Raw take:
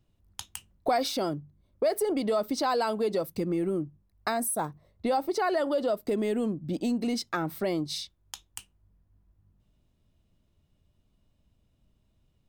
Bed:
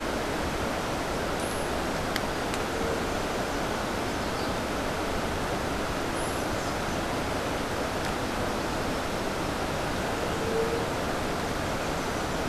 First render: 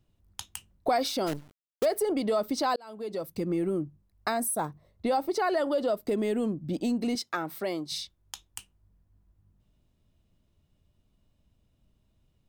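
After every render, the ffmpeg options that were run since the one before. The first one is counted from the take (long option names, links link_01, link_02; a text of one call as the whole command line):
ffmpeg -i in.wav -filter_complex "[0:a]asplit=3[link_01][link_02][link_03];[link_01]afade=type=out:start_time=1.26:duration=0.02[link_04];[link_02]acrusher=bits=6:dc=4:mix=0:aa=0.000001,afade=type=in:start_time=1.26:duration=0.02,afade=type=out:start_time=1.84:duration=0.02[link_05];[link_03]afade=type=in:start_time=1.84:duration=0.02[link_06];[link_04][link_05][link_06]amix=inputs=3:normalize=0,asettb=1/sr,asplit=3[link_07][link_08][link_09];[link_07]atrim=end=7.154[link_10];[link_08]atrim=start=7.15:end=7.92,asetpts=PTS-STARTPTS,afade=type=in:duration=0.004:curve=qsin,afade=type=out:start_time=0.766:duration=0.004:curve=qsin,highpass=frequency=400:poles=1[link_11];[link_09]atrim=start=7.916[link_12];[link_10][link_11]acrossfade=duration=0.004:curve1=hsin:curve2=qsin[link_13];[link_13][link_12]acrossfade=duration=0.004:curve1=qsin:curve2=hsin,asplit=2[link_14][link_15];[link_14]atrim=end=2.76,asetpts=PTS-STARTPTS,afade=type=out:start_time=2.756:duration=0.004:curve=hsin[link_16];[link_15]atrim=start=2.76,asetpts=PTS-STARTPTS,afade=type=in:duration=0.75[link_17];[link_16][link_17]concat=n=2:v=0:a=1" out.wav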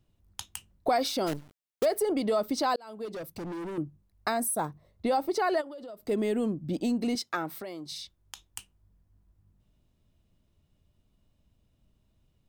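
ffmpeg -i in.wav -filter_complex "[0:a]asettb=1/sr,asplit=3[link_01][link_02][link_03];[link_01]atrim=end=3.054[link_04];[link_02]atrim=start=3.05:end=3.78,asetpts=PTS-STARTPTS,afade=type=in:duration=0.004:curve=qsin,afade=type=out:start_time=0.726:duration=0.004:curve=qsin,asoftclip=type=hard:threshold=-35dB[link_05];[link_03]atrim=start=3.776[link_06];[link_04][link_05]acrossfade=duration=0.004:curve1=hsin:curve2=qsin[link_07];[link_07][link_06]acrossfade=duration=0.004:curve1=qsin:curve2=hsin,asplit=3[link_08][link_09][link_10];[link_08]afade=type=out:start_time=5.6:duration=0.02[link_11];[link_09]acompressor=threshold=-41dB:ratio=6:attack=3.2:release=140:knee=1:detection=peak,afade=type=in:start_time=5.6:duration=0.02,afade=type=out:start_time=6.08:duration=0.02[link_12];[link_10]afade=type=in:start_time=6.08:duration=0.02[link_13];[link_11][link_12][link_13]amix=inputs=3:normalize=0,asettb=1/sr,asplit=3[link_14][link_15][link_16];[link_14]atrim=end=7.574[link_17];[link_15]atrim=start=7.57:end=8.48,asetpts=PTS-STARTPTS,afade=type=in:duration=0.004:curve=qsin,afade=type=out:start_time=0.906:duration=0.004:curve=qsin,acompressor=threshold=-36dB:ratio=5:attack=3.2:release=140:knee=1:detection=peak[link_18];[link_16]atrim=start=8.476[link_19];[link_17][link_18]acrossfade=duration=0.004:curve1=hsin:curve2=qsin[link_20];[link_20][link_19]acrossfade=duration=0.004:curve1=qsin:curve2=hsin" out.wav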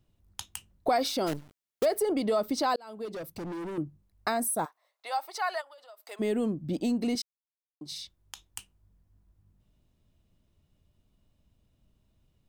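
ffmpeg -i in.wav -filter_complex "[0:a]asplit=3[link_01][link_02][link_03];[link_01]afade=type=out:start_time=4.64:duration=0.02[link_04];[link_02]highpass=frequency=760:width=0.5412,highpass=frequency=760:width=1.3066,afade=type=in:start_time=4.64:duration=0.02,afade=type=out:start_time=6.19:duration=0.02[link_05];[link_03]afade=type=in:start_time=6.19:duration=0.02[link_06];[link_04][link_05][link_06]amix=inputs=3:normalize=0,asplit=3[link_07][link_08][link_09];[link_07]atrim=end=7.22,asetpts=PTS-STARTPTS,afade=type=out:start_time=7.216:duration=0.004:curve=hsin[link_10];[link_08]atrim=start=7.22:end=7.81,asetpts=PTS-STARTPTS,volume=0[link_11];[link_09]atrim=start=7.81,asetpts=PTS-STARTPTS,afade=type=in:duration=0.004:curve=hsin[link_12];[link_10][link_11][link_12]concat=n=3:v=0:a=1" out.wav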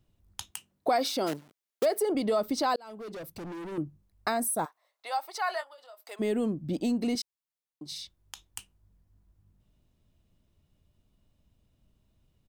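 ffmpeg -i in.wav -filter_complex "[0:a]asettb=1/sr,asplit=3[link_01][link_02][link_03];[link_01]atrim=end=0.514[link_04];[link_02]atrim=start=0.51:end=2.15,asetpts=PTS-STARTPTS,afade=type=in:duration=0.004:curve=qsin,afade=type=out:start_time=1.636:duration=0.004:curve=qsin,highpass=180[link_05];[link_03]atrim=start=2.146[link_06];[link_04][link_05]acrossfade=duration=0.004:curve1=hsin:curve2=qsin[link_07];[link_07][link_06]acrossfade=duration=0.004:curve1=qsin:curve2=hsin,asettb=1/sr,asplit=3[link_08][link_09][link_10];[link_08]atrim=end=2.764[link_11];[link_09]atrim=start=2.76:end=3.72,asetpts=PTS-STARTPTS,afade=type=in:duration=0.004:curve=qsin,afade=type=out:start_time=0.956:duration=0.004:curve=qsin,asoftclip=type=hard:threshold=-38dB[link_12];[link_10]atrim=start=3.716[link_13];[link_11][link_12]acrossfade=duration=0.004:curve1=hsin:curve2=qsin[link_14];[link_14][link_13]acrossfade=duration=0.004:curve1=qsin:curve2=hsin,asplit=3[link_15][link_16][link_17];[link_15]afade=type=out:start_time=5.46:duration=0.02[link_18];[link_16]asplit=2[link_19][link_20];[link_20]adelay=24,volume=-10dB[link_21];[link_19][link_21]amix=inputs=2:normalize=0,afade=type=in:start_time=5.46:duration=0.02,afade=type=out:start_time=6.02:duration=0.02[link_22];[link_17]afade=type=in:start_time=6.02:duration=0.02[link_23];[link_18][link_22][link_23]amix=inputs=3:normalize=0" out.wav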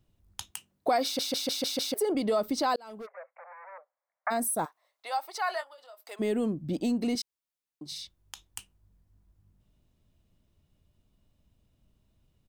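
ffmpeg -i in.wav -filter_complex "[0:a]asplit=3[link_01][link_02][link_03];[link_01]afade=type=out:start_time=3.05:duration=0.02[link_04];[link_02]asuperpass=centerf=1100:order=20:qfactor=0.63,afade=type=in:start_time=3.05:duration=0.02,afade=type=out:start_time=4.3:duration=0.02[link_05];[link_03]afade=type=in:start_time=4.3:duration=0.02[link_06];[link_04][link_05][link_06]amix=inputs=3:normalize=0,asplit=7[link_07][link_08][link_09][link_10][link_11][link_12][link_13];[link_07]atrim=end=1.192[link_14];[link_08]atrim=start=1.038:end=1.192[link_15];[link_09]atrim=start=1.038:end=1.192[link_16];[link_10]atrim=start=1.038:end=1.192[link_17];[link_11]atrim=start=1.038:end=1.192[link_18];[link_12]atrim=start=1.038:end=1.192[link_19];[link_13]atrim=start=1.938[link_20];[link_14][link_15]acrossfade=duration=0.004:curve1=hsin:curve2=hsin[link_21];[link_21][link_16]acrossfade=duration=0.004:curve1=hsin:curve2=hsin[link_22];[link_22][link_17]acrossfade=duration=0.004:curve1=hsin:curve2=hsin[link_23];[link_23][link_18]acrossfade=duration=0.004:curve1=hsin:curve2=hsin[link_24];[link_24][link_19]acrossfade=duration=0.004:curve1=hsin:curve2=hsin[link_25];[link_25][link_20]acrossfade=duration=0.004:curve1=hsin:curve2=hsin" out.wav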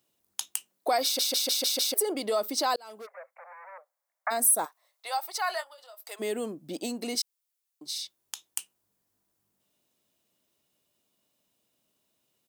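ffmpeg -i in.wav -af "highpass=360,highshelf=frequency=4800:gain=11" out.wav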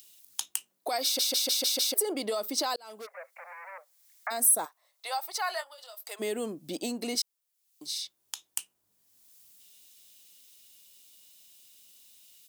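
ffmpeg -i in.wav -filter_complex "[0:a]acrossover=split=2600[link_01][link_02];[link_01]alimiter=level_in=0.5dB:limit=-24dB:level=0:latency=1:release=187,volume=-0.5dB[link_03];[link_02]acompressor=mode=upward:threshold=-39dB:ratio=2.5[link_04];[link_03][link_04]amix=inputs=2:normalize=0" out.wav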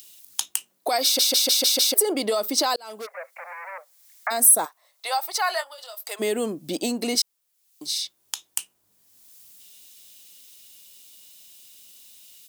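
ffmpeg -i in.wav -af "volume=7.5dB,alimiter=limit=-3dB:level=0:latency=1" out.wav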